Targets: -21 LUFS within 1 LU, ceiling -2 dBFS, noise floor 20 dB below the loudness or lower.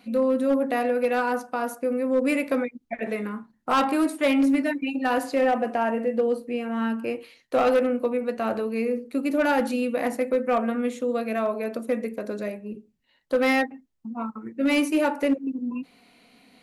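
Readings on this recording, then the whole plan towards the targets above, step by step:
clipped 0.9%; flat tops at -15.5 dBFS; loudness -25.0 LUFS; peak -15.5 dBFS; loudness target -21.0 LUFS
-> clip repair -15.5 dBFS; gain +4 dB

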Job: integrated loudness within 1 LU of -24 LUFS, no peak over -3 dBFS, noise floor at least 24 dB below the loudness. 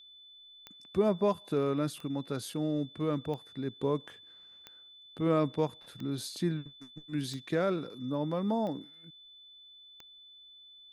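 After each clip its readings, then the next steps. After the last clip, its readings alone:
clicks 8; steady tone 3500 Hz; tone level -52 dBFS; loudness -33.0 LUFS; peak -16.0 dBFS; loudness target -24.0 LUFS
-> de-click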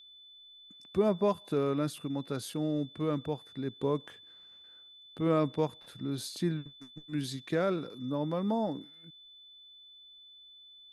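clicks 0; steady tone 3500 Hz; tone level -52 dBFS
-> notch 3500 Hz, Q 30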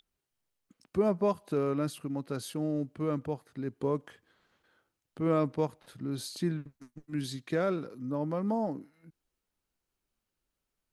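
steady tone none; loudness -33.0 LUFS; peak -16.0 dBFS; loudness target -24.0 LUFS
-> gain +9 dB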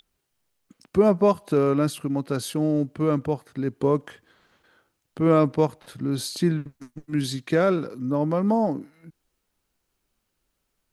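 loudness -24.0 LUFS; peak -7.0 dBFS; noise floor -77 dBFS

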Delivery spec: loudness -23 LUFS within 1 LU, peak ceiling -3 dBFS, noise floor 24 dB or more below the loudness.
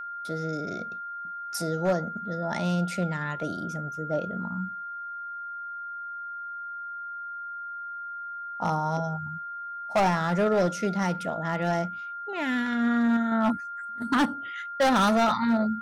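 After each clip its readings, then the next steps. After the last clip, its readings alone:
clipped 1.2%; flat tops at -18.0 dBFS; steady tone 1400 Hz; tone level -34 dBFS; loudness -28.5 LUFS; peak -18.0 dBFS; loudness target -23.0 LUFS
-> clip repair -18 dBFS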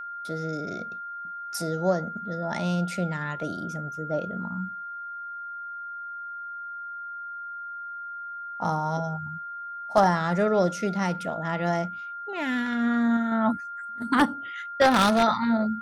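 clipped 0.0%; steady tone 1400 Hz; tone level -34 dBFS
-> notch 1400 Hz, Q 30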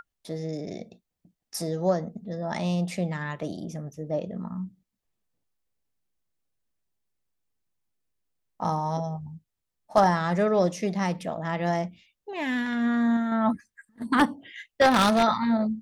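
steady tone none; loudness -26.5 LUFS; peak -8.0 dBFS; loudness target -23.0 LUFS
-> gain +3.5 dB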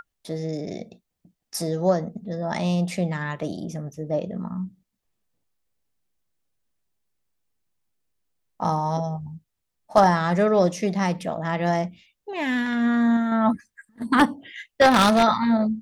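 loudness -23.0 LUFS; peak -4.5 dBFS; noise floor -80 dBFS

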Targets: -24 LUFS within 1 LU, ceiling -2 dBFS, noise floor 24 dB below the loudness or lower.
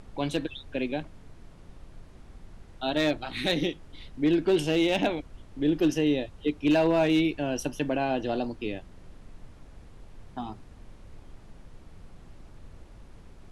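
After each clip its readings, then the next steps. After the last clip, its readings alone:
clipped 0.2%; flat tops at -16.0 dBFS; noise floor -50 dBFS; noise floor target -52 dBFS; loudness -27.5 LUFS; peak -16.0 dBFS; loudness target -24.0 LUFS
-> clip repair -16 dBFS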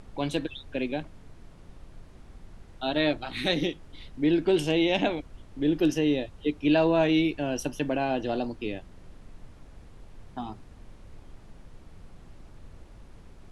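clipped 0.0%; noise floor -50 dBFS; noise floor target -52 dBFS
-> noise print and reduce 6 dB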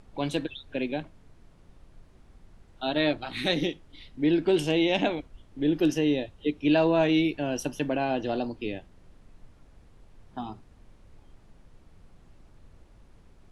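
noise floor -56 dBFS; loudness -27.0 LUFS; peak -10.0 dBFS; loudness target -24.0 LUFS
-> gain +3 dB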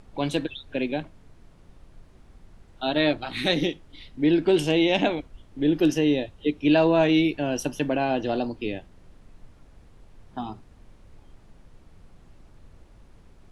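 loudness -24.0 LUFS; peak -7.0 dBFS; noise floor -53 dBFS

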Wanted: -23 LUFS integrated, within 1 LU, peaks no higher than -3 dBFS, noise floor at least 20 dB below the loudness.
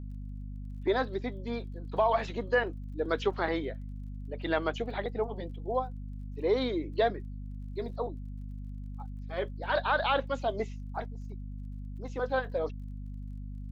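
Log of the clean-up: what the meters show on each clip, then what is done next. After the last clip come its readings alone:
ticks 28/s; hum 50 Hz; harmonics up to 250 Hz; hum level -37 dBFS; loudness -33.5 LUFS; peak -15.5 dBFS; loudness target -23.0 LUFS
-> de-click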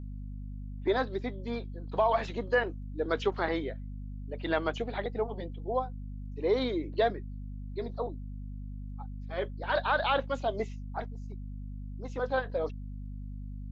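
ticks 0/s; hum 50 Hz; harmonics up to 250 Hz; hum level -37 dBFS
-> notches 50/100/150/200/250 Hz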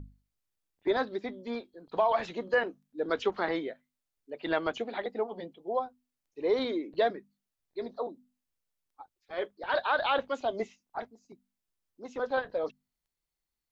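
hum none; loudness -32.5 LUFS; peak -16.0 dBFS; loudness target -23.0 LUFS
-> gain +9.5 dB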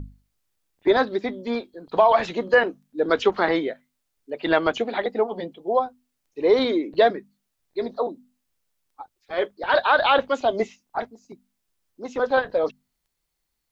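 loudness -23.0 LUFS; peak -6.5 dBFS; noise floor -78 dBFS

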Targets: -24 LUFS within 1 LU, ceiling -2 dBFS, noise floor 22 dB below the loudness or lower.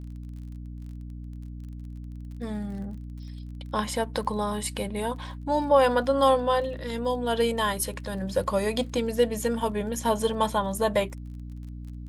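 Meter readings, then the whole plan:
ticks 33/s; hum 60 Hz; harmonics up to 300 Hz; hum level -36 dBFS; loudness -26.5 LUFS; peak -9.0 dBFS; loudness target -24.0 LUFS
-> de-click; de-hum 60 Hz, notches 5; gain +2.5 dB

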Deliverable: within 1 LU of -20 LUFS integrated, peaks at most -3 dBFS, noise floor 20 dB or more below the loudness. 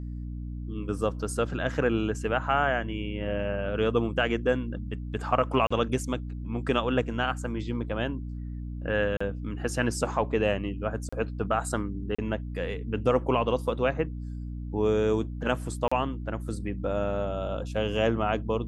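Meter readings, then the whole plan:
dropouts 5; longest dropout 35 ms; hum 60 Hz; harmonics up to 300 Hz; hum level -33 dBFS; loudness -29.0 LUFS; peak -9.5 dBFS; loudness target -20.0 LUFS
-> interpolate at 5.67/9.17/11.09/12.15/15.88, 35 ms; de-hum 60 Hz, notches 5; gain +9 dB; limiter -3 dBFS

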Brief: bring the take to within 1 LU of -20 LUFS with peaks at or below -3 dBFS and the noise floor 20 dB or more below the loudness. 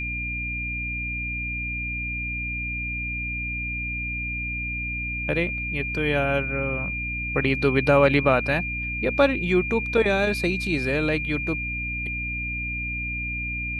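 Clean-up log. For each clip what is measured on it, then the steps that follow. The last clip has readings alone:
hum 60 Hz; harmonics up to 300 Hz; hum level -31 dBFS; steady tone 2400 Hz; tone level -28 dBFS; loudness -24.5 LUFS; peak -5.0 dBFS; loudness target -20.0 LUFS
-> de-hum 60 Hz, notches 5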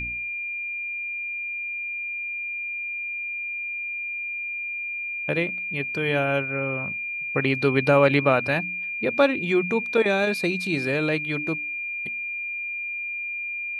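hum none; steady tone 2400 Hz; tone level -28 dBFS
-> notch 2400 Hz, Q 30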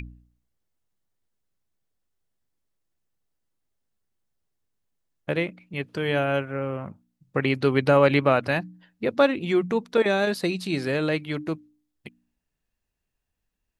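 steady tone none; loudness -24.5 LUFS; peak -6.0 dBFS; loudness target -20.0 LUFS
-> gain +4.5 dB; limiter -3 dBFS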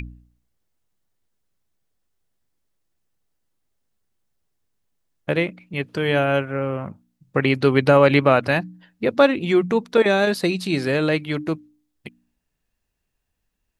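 loudness -20.0 LUFS; peak -3.0 dBFS; noise floor -77 dBFS

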